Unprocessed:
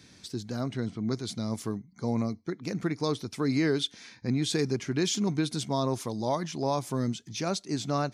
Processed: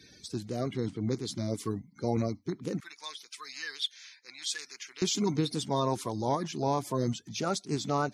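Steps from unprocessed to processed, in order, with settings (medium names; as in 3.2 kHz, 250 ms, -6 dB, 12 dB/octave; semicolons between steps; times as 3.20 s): coarse spectral quantiser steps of 30 dB; 2.80–5.02 s: Chebyshev high-pass 2 kHz, order 2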